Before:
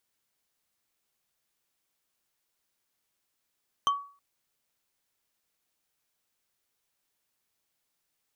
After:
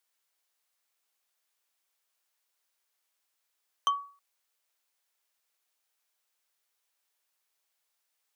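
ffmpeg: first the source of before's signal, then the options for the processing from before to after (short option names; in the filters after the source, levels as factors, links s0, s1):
-f lavfi -i "aevalsrc='0.112*pow(10,-3*t/0.41)*sin(2*PI*1130*t)+0.0531*pow(10,-3*t/0.121)*sin(2*PI*3115.4*t)+0.0251*pow(10,-3*t/0.054)*sin(2*PI*6106.5*t)+0.0119*pow(10,-3*t/0.03)*sin(2*PI*10094.3*t)+0.00562*pow(10,-3*t/0.018)*sin(2*PI*15074.2*t)':d=0.32:s=44100"
-af "highpass=550"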